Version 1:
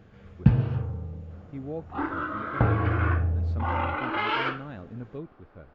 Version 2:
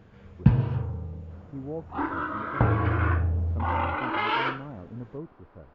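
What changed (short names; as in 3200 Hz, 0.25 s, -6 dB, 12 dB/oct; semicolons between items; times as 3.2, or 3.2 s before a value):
speech: add polynomial smoothing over 65 samples; master: remove notch 970 Hz, Q 9.7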